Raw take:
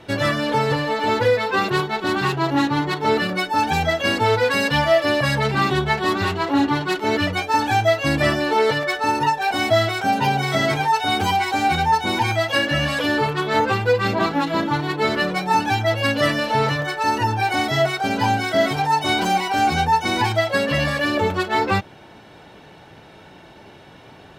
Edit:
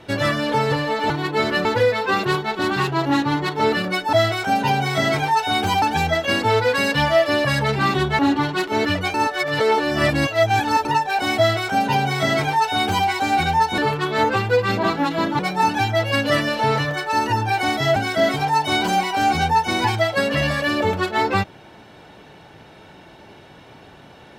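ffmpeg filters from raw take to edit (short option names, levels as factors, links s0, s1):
-filter_complex "[0:a]asplit=11[s0][s1][s2][s3][s4][s5][s6][s7][s8][s9][s10];[s0]atrim=end=1.102[s11];[s1]atrim=start=14.748:end=15.302[s12];[s2]atrim=start=1.098:end=3.582[s13];[s3]atrim=start=9.698:end=11.392[s14];[s4]atrim=start=3.578:end=5.952[s15];[s5]atrim=start=6.508:end=7.462[s16];[s6]atrim=start=7.458:end=9.172,asetpts=PTS-STARTPTS,areverse[s17];[s7]atrim=start=9.168:end=12.102[s18];[s8]atrim=start=13.138:end=14.752[s19];[s9]atrim=start=15.298:end=17.872[s20];[s10]atrim=start=18.328[s21];[s11][s12]acrossfade=d=0.004:c1=hsin:c2=hsin[s22];[s22][s13]acrossfade=d=0.004:c1=hsin:c2=hsin[s23];[s23][s14]acrossfade=d=0.004:c1=hsin:c2=hsin[s24];[s24][s15]acrossfade=d=0.004:c1=hsin:c2=hsin[s25];[s25][s16]acrossfade=d=0.004:c1=hsin:c2=hsin[s26];[s26][s17]acrossfade=d=0.004:c1=hsin:c2=hsin[s27];[s27][s18]acrossfade=d=0.004:c1=hsin:c2=hsin[s28];[s28][s19]acrossfade=d=0.004:c1=hsin:c2=hsin[s29];[s29][s20]acrossfade=d=0.004:c1=hsin:c2=hsin[s30];[s30][s21]acrossfade=d=0.004:c1=hsin:c2=hsin"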